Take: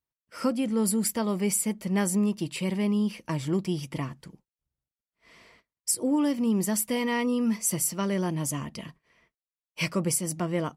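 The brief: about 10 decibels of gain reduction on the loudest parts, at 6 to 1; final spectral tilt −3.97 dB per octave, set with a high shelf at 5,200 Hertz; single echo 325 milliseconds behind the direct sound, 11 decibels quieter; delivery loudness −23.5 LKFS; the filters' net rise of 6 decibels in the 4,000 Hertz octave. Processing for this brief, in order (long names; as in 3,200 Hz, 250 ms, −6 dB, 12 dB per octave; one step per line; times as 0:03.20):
parametric band 4,000 Hz +4.5 dB
high-shelf EQ 5,200 Hz +8 dB
downward compressor 6 to 1, threshold −27 dBFS
single-tap delay 325 ms −11 dB
level +7 dB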